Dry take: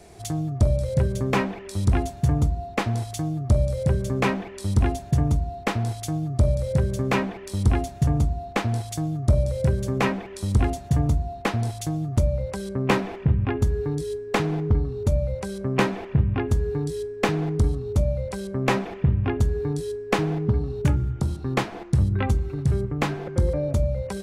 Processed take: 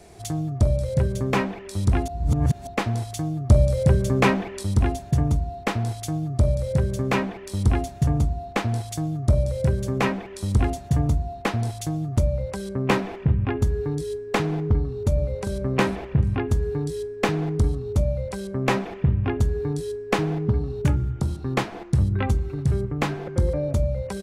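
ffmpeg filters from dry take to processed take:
-filter_complex "[0:a]asplit=2[s0][s1];[s1]afade=t=in:st=14.77:d=0.01,afade=t=out:st=15.55:d=0.01,aecho=0:1:400|800|1200|1600:0.354813|0.124185|0.0434646|0.0152126[s2];[s0][s2]amix=inputs=2:normalize=0,asplit=5[s3][s4][s5][s6][s7];[s3]atrim=end=2.082[s8];[s4]atrim=start=2.078:end=2.672,asetpts=PTS-STARTPTS,areverse[s9];[s5]atrim=start=2.668:end=3.502[s10];[s6]atrim=start=3.498:end=4.632,asetpts=PTS-STARTPTS,volume=1.58[s11];[s7]atrim=start=4.628[s12];[s8][s9]acrossfade=d=0.004:c1=hsin:c2=hsin[s13];[s13][s10]acrossfade=d=0.004:c1=hsin:c2=hsin[s14];[s14][s11]acrossfade=d=0.004:c1=hsin:c2=hsin[s15];[s15][s12]acrossfade=d=0.004:c1=hsin:c2=hsin"

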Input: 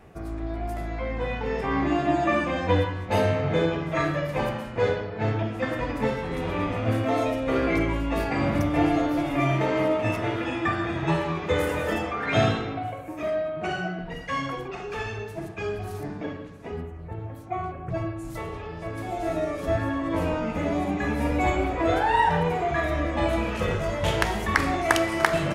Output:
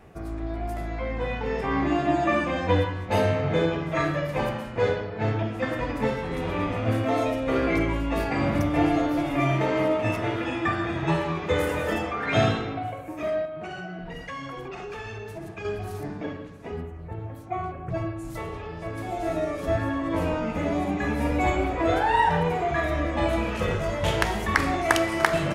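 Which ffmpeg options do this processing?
-filter_complex "[0:a]asettb=1/sr,asplit=3[s0][s1][s2];[s0]atrim=end=13.454[s3];[s1]atrim=start=13.45:end=15.65,asetpts=PTS-STARTPTS,afade=t=in:d=0.004:c=qsin,afade=t=out:st=2.196:d=0.004:c=qsin,acompressor=threshold=0.0251:ratio=6:attack=3.2:release=140:knee=1:detection=peak[s4];[s2]atrim=start=15.646[s5];[s3][s4]acrossfade=d=0.004:c1=hsin:c2=qsin[s6];[s6][s5]acrossfade=d=0.004:c1=qsin:c2=hsin"

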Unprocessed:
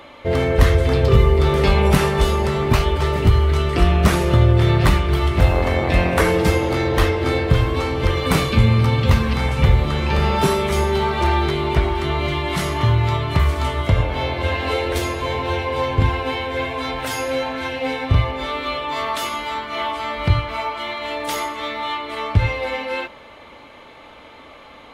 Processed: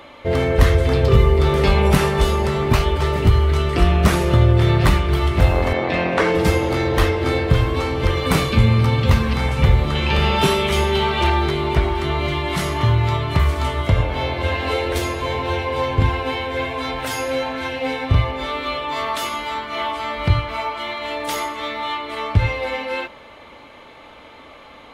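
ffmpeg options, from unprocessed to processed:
-filter_complex "[0:a]asettb=1/sr,asplit=3[s0][s1][s2];[s0]atrim=end=5.734[s3];[s1]atrim=start=5.73:end=6.35,asetpts=PTS-STARTPTS,afade=t=in:d=0.004:c=qsin,afade=t=out:st=0.616:d=0.004:c=qsin,highpass=170,lowpass=4900[s4];[s2]atrim=start=6.346[s5];[s3][s4]acrossfade=d=0.004:c1=hsin:c2=qsin[s6];[s6][s5]acrossfade=d=0.004:c1=qsin:c2=hsin,asettb=1/sr,asplit=3[s7][s8][s9];[s7]atrim=end=9.954[s10];[s8]atrim=start=9.95:end=11.3,asetpts=PTS-STARTPTS,afade=t=in:d=0.004:c=qsin,afade=t=out:st=1.346:d=0.004:c=qsin,equalizer=f=3000:w=1.8:g=8[s11];[s9]atrim=start=11.296[s12];[s10][s11]acrossfade=d=0.004:c1=hsin:c2=qsin[s13];[s13][s12]acrossfade=d=0.004:c1=qsin:c2=hsin"

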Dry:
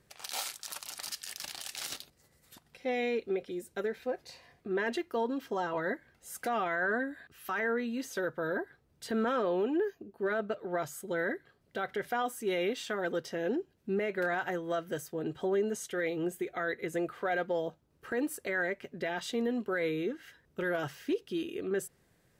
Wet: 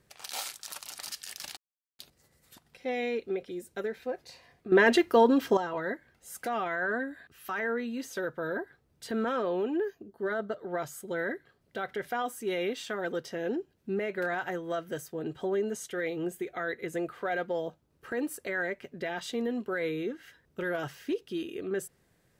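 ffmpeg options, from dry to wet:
-filter_complex "[0:a]asettb=1/sr,asplit=3[s0][s1][s2];[s0]atrim=end=10.084[s3];[s1]atrim=start=10.08:end=10.69,asetpts=PTS-STARTPTS,afade=t=in:d=0.004:c=qsin,afade=t=out:st=0.606:d=0.004:c=qsin,asuperstop=centerf=2500:order=4:qfactor=3.5[s4];[s2]atrim=start=10.686[s5];[s3][s4]acrossfade=d=0.004:c1=hsin:c2=qsin[s6];[s6][s5]acrossfade=d=0.004:c1=qsin:c2=hsin,asplit=5[s7][s8][s9][s10][s11];[s7]atrim=end=1.57,asetpts=PTS-STARTPTS,afade=t=out:st=1.566:d=0.004:c=hsin[s12];[s8]atrim=start=1.57:end=1.99,asetpts=PTS-STARTPTS,volume=0[s13];[s9]atrim=start=1.99:end=4.722,asetpts=PTS-STARTPTS,afade=t=in:d=0.004:c=hsin[s14];[s10]atrim=start=4.718:end=5.572,asetpts=PTS-STARTPTS,volume=3.55[s15];[s11]atrim=start=5.568[s16];[s12][s13][s14]concat=n=3:v=0:a=1[s17];[s17][s15]acrossfade=d=0.004:c1=hsin:c2=hsin[s18];[s18][s16]acrossfade=d=0.004:c1=hsin:c2=hsin"

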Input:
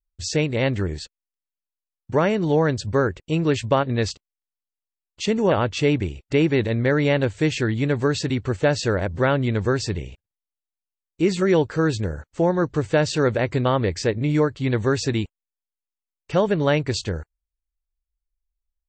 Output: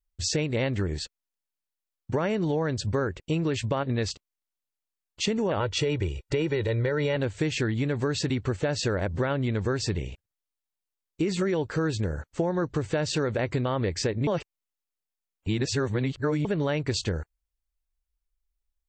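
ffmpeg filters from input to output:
-filter_complex "[0:a]asettb=1/sr,asplit=3[s0][s1][s2];[s0]atrim=end=5.604[s3];[s1]atrim=start=5.6:end=7.16,asetpts=PTS-STARTPTS,afade=t=in:d=0.004:c=qsin,afade=t=out:st=1.556:d=0.004:c=qsin,aecho=1:1:2.1:0.65,atrim=end_sample=68796[s4];[s2]atrim=start=7.156[s5];[s3][s4]acrossfade=d=0.004:c1=hsin:c2=qsin[s6];[s6][s5]acrossfade=d=0.004:c1=qsin:c2=hsin,asplit=3[s7][s8][s9];[s7]atrim=end=14.272[s10];[s8]atrim=start=14.268:end=16.452,asetpts=PTS-STARTPTS,areverse[s11];[s9]atrim=start=16.448[s12];[s10][s11]acrossfade=d=0.004:c1=hsin:c2=hsin[s13];[s13][s12]acrossfade=d=0.004:c1=hsin:c2=hsin,alimiter=limit=0.237:level=0:latency=1:release=27,acompressor=threshold=0.0631:ratio=6,volume=1.12"

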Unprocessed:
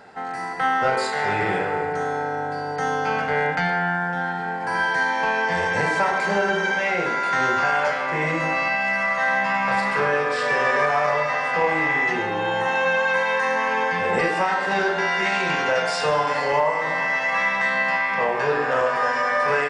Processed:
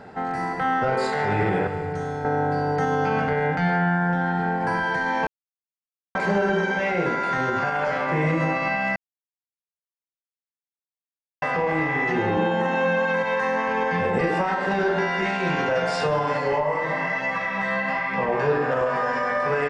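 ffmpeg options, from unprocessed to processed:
-filter_complex "[0:a]asettb=1/sr,asplit=3[s0][s1][s2];[s0]atrim=end=1.674[s3];[s1]atrim=start=1.67:end=2.25,asetpts=PTS-STARTPTS,afade=t=in:d=0.004:c=qsin,afade=t=out:st=0.576:d=0.004:c=qsin,acrossover=split=140|3000[s4][s5][s6];[s5]acompressor=threshold=0.0178:ratio=2.5:attack=3.2:release=140:knee=2.83:detection=peak[s7];[s4][s7][s6]amix=inputs=3:normalize=0[s8];[s2]atrim=start=2.246[s9];[s3][s8]acrossfade=d=0.004:c1=hsin:c2=qsin[s10];[s10][s9]acrossfade=d=0.004:c1=qsin:c2=hsin,asettb=1/sr,asplit=3[s11][s12][s13];[s11]atrim=end=12.374[s14];[s12]atrim=start=12.37:end=13.24,asetpts=PTS-STARTPTS,afade=t=in:d=0.004:c=qsin,afade=t=out:st=0.866:d=0.004:c=qsin,lowshelf=f=140:t=q:w=3:g=-11[s15];[s13]atrim=start=13.236[s16];[s14][s15]acrossfade=d=0.004:c1=hsin:c2=qsin[s17];[s17][s16]acrossfade=d=0.004:c1=qsin:c2=hsin,asplit=3[s18][s19][s20];[s18]afade=t=out:st=16.37:d=0.02[s21];[s19]flanger=delay=15.5:depth=5.7:speed=1.1,afade=t=in:st=16.37:d=0.02,afade=t=out:st=18.31:d=0.02[s22];[s20]afade=t=in:st=18.31:d=0.02[s23];[s21][s22][s23]amix=inputs=3:normalize=0,asplit=5[s24][s25][s26][s27][s28];[s24]atrim=end=5.27,asetpts=PTS-STARTPTS,afade=t=out:st=5.266:d=0.004:c=hsin[s29];[s25]atrim=start=5.27:end=6.15,asetpts=PTS-STARTPTS,volume=0[s30];[s26]atrim=start=6.15:end=8.96,asetpts=PTS-STARTPTS,afade=t=in:d=0.004:c=hsin,afade=t=out:st=2.806:d=0.004:c=hsin[s31];[s27]atrim=start=8.96:end=11.42,asetpts=PTS-STARTPTS,volume=0[s32];[s28]atrim=start=11.42,asetpts=PTS-STARTPTS,afade=t=in:d=0.004:c=hsin[s33];[s29][s30][s31][s32][s33]concat=n=5:v=0:a=1,highshelf=f=5200:g=-6.5,alimiter=limit=0.133:level=0:latency=1:release=147,lowshelf=f=420:g=11.5"

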